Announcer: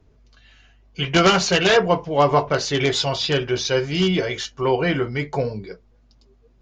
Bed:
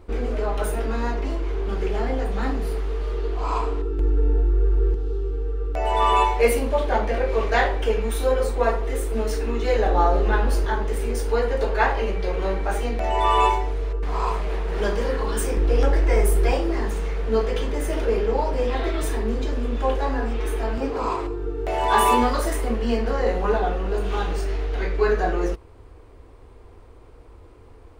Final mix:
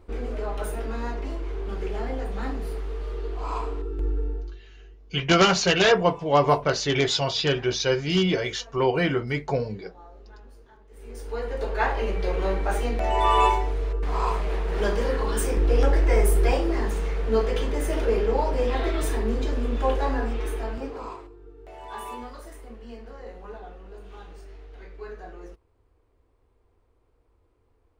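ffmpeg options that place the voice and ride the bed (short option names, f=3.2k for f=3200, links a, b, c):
-filter_complex "[0:a]adelay=4150,volume=-2.5dB[a];[1:a]volume=23dB,afade=t=out:st=4.09:d=0.52:silence=0.0630957,afade=t=in:st=10.89:d=1.38:silence=0.0375837,afade=t=out:st=20.11:d=1.19:silence=0.125893[b];[a][b]amix=inputs=2:normalize=0"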